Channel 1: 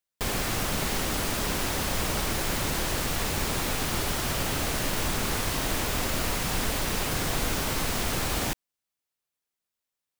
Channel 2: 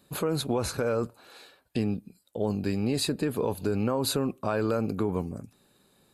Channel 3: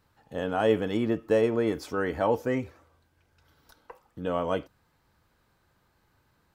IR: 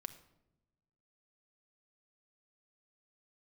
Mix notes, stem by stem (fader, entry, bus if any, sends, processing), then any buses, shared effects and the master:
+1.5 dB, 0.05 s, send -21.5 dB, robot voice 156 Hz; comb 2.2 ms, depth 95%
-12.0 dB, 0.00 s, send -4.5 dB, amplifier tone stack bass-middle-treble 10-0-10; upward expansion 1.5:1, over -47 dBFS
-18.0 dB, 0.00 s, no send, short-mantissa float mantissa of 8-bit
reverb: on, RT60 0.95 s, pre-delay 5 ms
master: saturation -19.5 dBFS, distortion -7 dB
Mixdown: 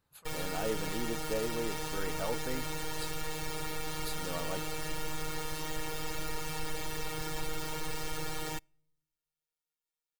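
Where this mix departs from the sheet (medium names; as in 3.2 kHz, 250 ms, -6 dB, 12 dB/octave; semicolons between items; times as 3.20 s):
stem 1 +1.5 dB -> -8.0 dB; stem 2: send off; stem 3 -18.0 dB -> -11.0 dB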